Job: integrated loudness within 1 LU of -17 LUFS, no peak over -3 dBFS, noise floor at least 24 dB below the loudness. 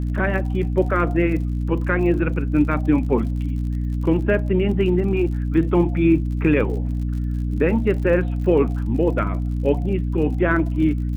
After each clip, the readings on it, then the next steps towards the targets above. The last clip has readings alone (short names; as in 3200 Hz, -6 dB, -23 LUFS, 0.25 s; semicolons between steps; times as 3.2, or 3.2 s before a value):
ticks 50/s; hum 60 Hz; harmonics up to 300 Hz; hum level -20 dBFS; loudness -21.0 LUFS; peak -6.0 dBFS; loudness target -17.0 LUFS
-> de-click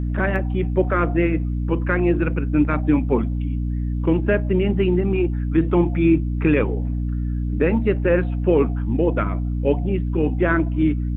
ticks 0.090/s; hum 60 Hz; harmonics up to 300 Hz; hum level -20 dBFS
-> de-hum 60 Hz, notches 5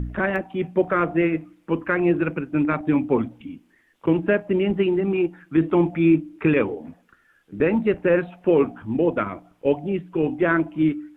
hum none; loudness -22.5 LUFS; peak -7.0 dBFS; loudness target -17.0 LUFS
-> gain +5.5 dB; limiter -3 dBFS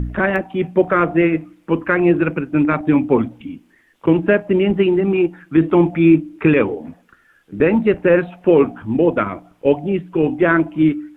loudness -17.0 LUFS; peak -3.0 dBFS; noise floor -56 dBFS